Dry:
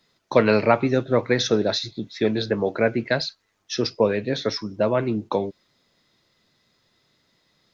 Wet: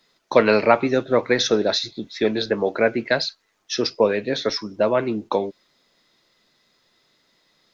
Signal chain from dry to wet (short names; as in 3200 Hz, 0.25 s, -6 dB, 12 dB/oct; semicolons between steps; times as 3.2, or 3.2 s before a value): bell 91 Hz -11 dB 2 oct; gain +3 dB